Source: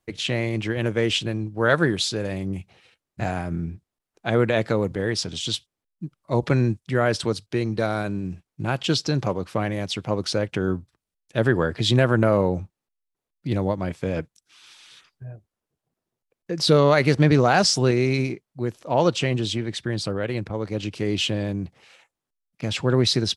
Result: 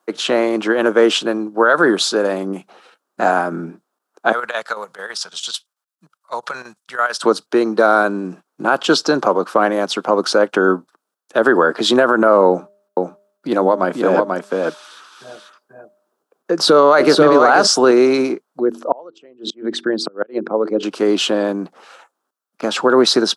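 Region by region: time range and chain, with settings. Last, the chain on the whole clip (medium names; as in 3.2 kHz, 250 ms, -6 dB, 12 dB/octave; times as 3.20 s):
4.32–7.22 s: square tremolo 9 Hz, depth 60%, duty 70% + amplifier tone stack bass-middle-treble 10-0-10
12.48–17.67 s: de-hum 201.7 Hz, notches 3 + delay 488 ms -3.5 dB
18.60–20.83 s: resonances exaggerated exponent 1.5 + de-hum 47.31 Hz, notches 9 + inverted gate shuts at -16 dBFS, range -31 dB
whole clip: Bessel high-pass 370 Hz, order 8; resonant high shelf 1.7 kHz -6.5 dB, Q 3; loudness maximiser +15 dB; trim -1 dB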